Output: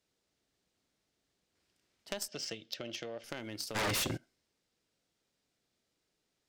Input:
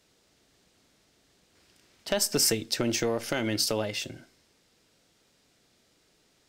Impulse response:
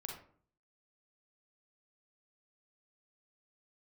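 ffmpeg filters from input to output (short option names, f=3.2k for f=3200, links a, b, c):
-filter_complex "[0:a]asettb=1/sr,asplit=3[a][b][c];[a]atrim=end=2.284[d];[b]atrim=start=2.28:end=3.24,asetpts=PTS-STARTPTS,afade=t=in:d=0.004:c=qsin,afade=t=out:st=0.956:d=0.004:c=qsin,highpass=130,equalizer=f=260:t=q:w=4:g=-7,equalizer=f=410:t=q:w=4:g=-4,equalizer=f=590:t=q:w=4:g=6,equalizer=f=970:t=q:w=4:g=-7,equalizer=f=3.1k:t=q:w=4:g=10,lowpass=f=5.9k:w=0.5412,lowpass=f=5.9k:w=1.3066[e];[c]atrim=start=3.236[f];[d][e]acrossfade=d=0.004:c1=hsin:c2=qsin[g];[g][f]acrossfade=d=0.004:c1=qsin:c2=hsin,asplit=3[h][i][j];[h]afade=t=out:st=3.74:d=0.02[k];[i]aeval=exprs='0.15*sin(PI/2*7.94*val(0)/0.15)':c=same,afade=t=in:st=3.74:d=0.02,afade=t=out:st=4.16:d=0.02[l];[j]afade=t=in:st=4.16:d=0.02[m];[k][l][m]amix=inputs=3:normalize=0,aeval=exprs='0.335*(cos(1*acos(clip(val(0)/0.335,-1,1)))-cos(1*PI/2))+0.075*(cos(3*acos(clip(val(0)/0.335,-1,1)))-cos(3*PI/2))':c=same,volume=-6dB"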